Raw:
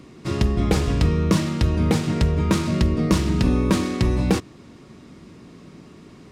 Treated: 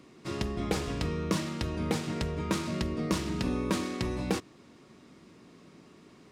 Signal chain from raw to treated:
low-shelf EQ 160 Hz −11 dB
level −7 dB

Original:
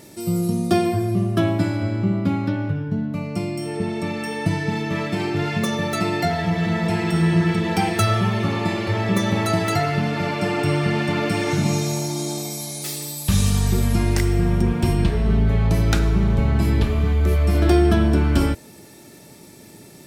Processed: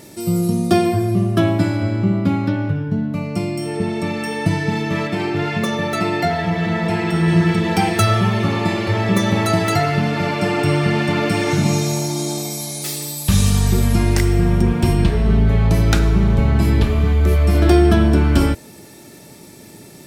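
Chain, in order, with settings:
0:05.07–0:07.28: bass and treble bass −3 dB, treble −5 dB
level +3.5 dB

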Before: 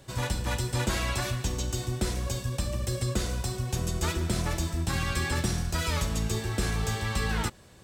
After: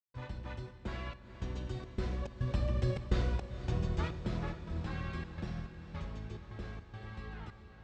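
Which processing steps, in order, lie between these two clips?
source passing by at 0:03.05, 7 m/s, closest 5.1 metres
high-shelf EQ 2,100 Hz +10.5 dB
gate pattern ".xxxx.xx..xxx.xx" 106 BPM −60 dB
head-to-tape spacing loss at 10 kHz 45 dB
feedback delay with all-pass diffusion 465 ms, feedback 64%, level −11.5 dB
convolution reverb RT60 0.80 s, pre-delay 43 ms, DRR 16 dB

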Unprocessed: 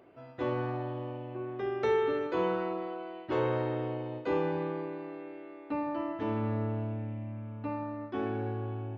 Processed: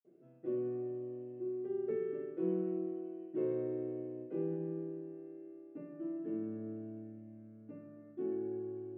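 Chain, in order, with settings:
high-pass filter 210 Hz 12 dB per octave
convolution reverb, pre-delay 47 ms, DRR −60 dB
level −4.5 dB

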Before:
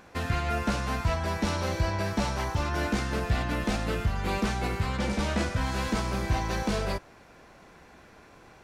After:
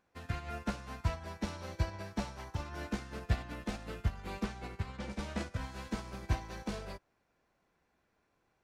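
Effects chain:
0:04.44–0:05.12: high-shelf EQ 11,000 Hz −9.5 dB
expander for the loud parts 2.5 to 1, over −35 dBFS
level −2.5 dB

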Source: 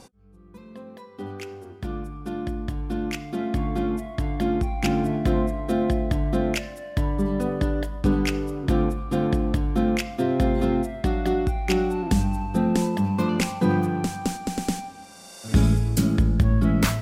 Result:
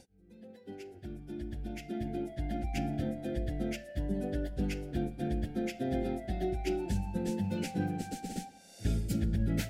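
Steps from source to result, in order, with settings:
Butterworth band-reject 1,100 Hz, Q 1.6
time stretch by phase vocoder 0.57×
level −7.5 dB

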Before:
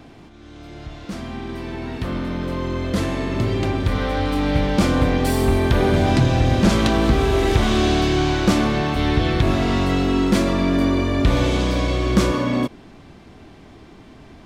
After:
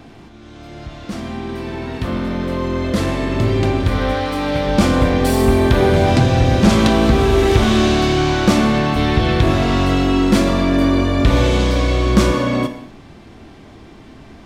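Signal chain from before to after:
0:04.14–0:04.67: low-shelf EQ 130 Hz −11.5 dB
reverb whose tail is shaped and stops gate 280 ms falling, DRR 8 dB
level +3 dB

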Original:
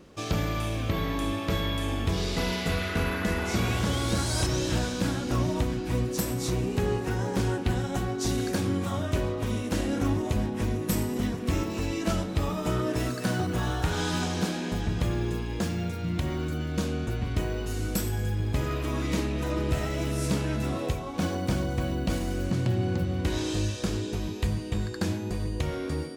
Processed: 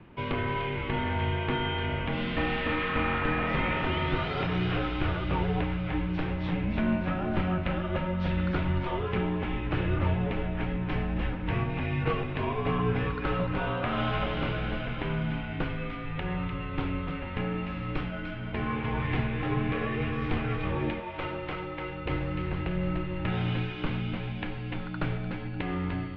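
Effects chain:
single-sideband voice off tune −190 Hz 230–3,100 Hz
0:21.00–0:22.06: low-shelf EQ 340 Hz −11 dB
delay with a high-pass on its return 299 ms, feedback 61%, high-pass 1,800 Hz, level −6 dB
level +3 dB

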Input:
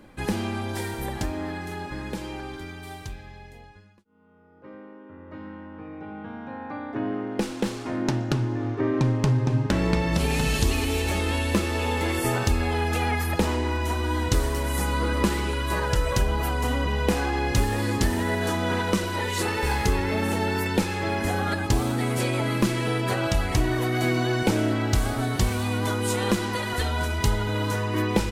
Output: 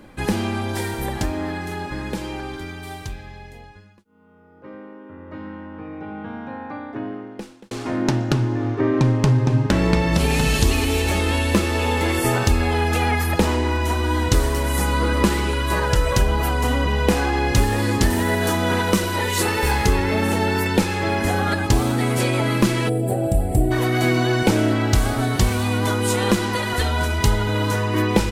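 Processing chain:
0:06.37–0:07.71: fade out
0:18.10–0:19.71: high-shelf EQ 11,000 Hz +9.5 dB
0:22.89–0:23.71: gain on a spectral selection 830–7,300 Hz −20 dB
level +5 dB

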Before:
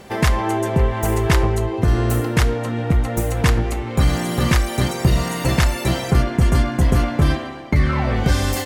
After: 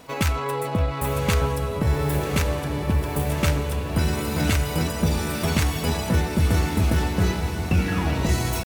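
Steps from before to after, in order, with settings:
high-shelf EQ 3,500 Hz +3 dB
pitch shifter +4 semitones
feedback delay with all-pass diffusion 1,091 ms, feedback 55%, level −6.5 dB
level −6 dB

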